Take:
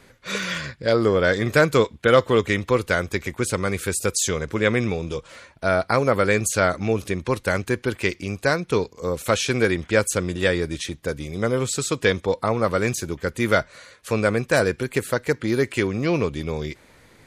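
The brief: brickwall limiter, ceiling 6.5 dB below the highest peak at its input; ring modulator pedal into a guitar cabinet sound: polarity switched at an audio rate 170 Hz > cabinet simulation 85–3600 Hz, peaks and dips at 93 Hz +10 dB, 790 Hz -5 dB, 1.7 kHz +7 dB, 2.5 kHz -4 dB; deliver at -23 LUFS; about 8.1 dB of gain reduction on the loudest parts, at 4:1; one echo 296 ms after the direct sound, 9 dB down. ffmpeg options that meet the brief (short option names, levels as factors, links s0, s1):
-af "acompressor=threshold=0.0891:ratio=4,alimiter=limit=0.178:level=0:latency=1,aecho=1:1:296:0.355,aeval=exprs='val(0)*sgn(sin(2*PI*170*n/s))':c=same,highpass=85,equalizer=f=93:t=q:w=4:g=10,equalizer=f=790:t=q:w=4:g=-5,equalizer=f=1700:t=q:w=4:g=7,equalizer=f=2500:t=q:w=4:g=-4,lowpass=f=3600:w=0.5412,lowpass=f=3600:w=1.3066,volume=1.68"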